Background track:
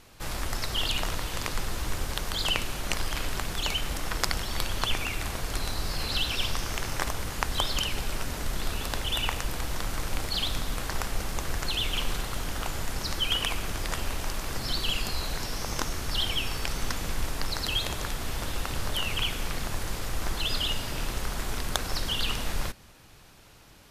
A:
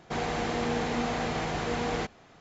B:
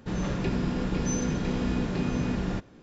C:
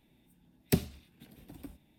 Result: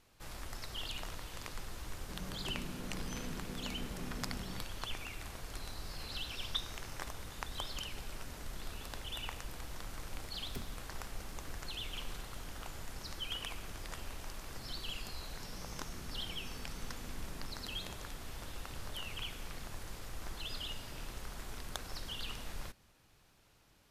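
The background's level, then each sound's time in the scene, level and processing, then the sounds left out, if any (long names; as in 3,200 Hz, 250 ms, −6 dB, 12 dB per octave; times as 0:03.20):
background track −13.5 dB
0:02.02: mix in B −17 dB
0:05.82: mix in C −11.5 dB + voice inversion scrambler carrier 3,800 Hz
0:09.83: mix in C −13.5 dB + brickwall limiter −21.5 dBFS
0:15.37: mix in B −10 dB + downward compressor, threshold −42 dBFS
not used: A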